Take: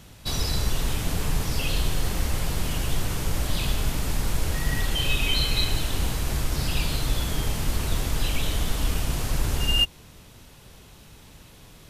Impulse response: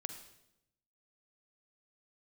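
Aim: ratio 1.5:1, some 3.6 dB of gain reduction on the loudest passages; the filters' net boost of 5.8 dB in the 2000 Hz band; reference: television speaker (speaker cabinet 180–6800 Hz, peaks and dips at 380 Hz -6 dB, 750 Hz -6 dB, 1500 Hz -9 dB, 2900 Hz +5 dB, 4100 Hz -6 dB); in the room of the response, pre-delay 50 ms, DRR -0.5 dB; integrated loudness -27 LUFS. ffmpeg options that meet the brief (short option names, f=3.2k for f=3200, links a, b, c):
-filter_complex "[0:a]equalizer=f=2k:t=o:g=7,acompressor=threshold=-27dB:ratio=1.5,asplit=2[a][b];[1:a]atrim=start_sample=2205,adelay=50[c];[b][c]afir=irnorm=-1:irlink=0,volume=2.5dB[d];[a][d]amix=inputs=2:normalize=0,highpass=f=180:w=0.5412,highpass=f=180:w=1.3066,equalizer=f=380:t=q:w=4:g=-6,equalizer=f=750:t=q:w=4:g=-6,equalizer=f=1.5k:t=q:w=4:g=-9,equalizer=f=2.9k:t=q:w=4:g=5,equalizer=f=4.1k:t=q:w=4:g=-6,lowpass=f=6.8k:w=0.5412,lowpass=f=6.8k:w=1.3066,volume=-0.5dB"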